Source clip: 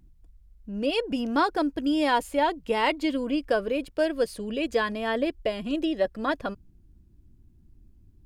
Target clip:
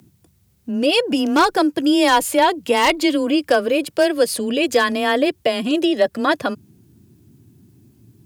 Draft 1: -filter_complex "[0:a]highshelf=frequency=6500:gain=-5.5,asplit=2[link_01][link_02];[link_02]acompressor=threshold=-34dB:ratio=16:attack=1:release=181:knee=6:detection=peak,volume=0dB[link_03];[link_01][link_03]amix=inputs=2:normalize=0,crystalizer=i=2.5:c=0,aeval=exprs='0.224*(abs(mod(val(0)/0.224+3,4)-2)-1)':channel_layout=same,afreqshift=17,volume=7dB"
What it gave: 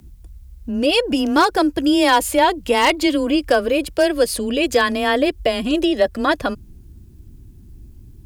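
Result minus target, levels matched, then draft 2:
125 Hz band +3.5 dB
-filter_complex "[0:a]highpass=frequency=94:width=0.5412,highpass=frequency=94:width=1.3066,highshelf=frequency=6500:gain=-5.5,asplit=2[link_01][link_02];[link_02]acompressor=threshold=-34dB:ratio=16:attack=1:release=181:knee=6:detection=peak,volume=0dB[link_03];[link_01][link_03]amix=inputs=2:normalize=0,crystalizer=i=2.5:c=0,aeval=exprs='0.224*(abs(mod(val(0)/0.224+3,4)-2)-1)':channel_layout=same,afreqshift=17,volume=7dB"

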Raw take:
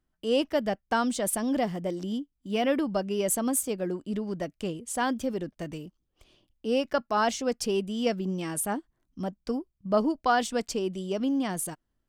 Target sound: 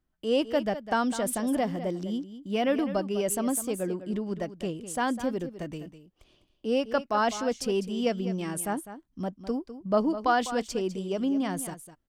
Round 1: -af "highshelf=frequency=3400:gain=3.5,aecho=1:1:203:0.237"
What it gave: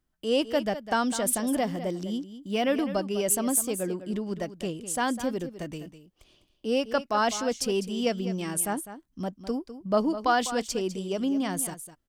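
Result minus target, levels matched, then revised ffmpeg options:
8,000 Hz band +5.0 dB
-af "highshelf=frequency=3400:gain=-3.5,aecho=1:1:203:0.237"

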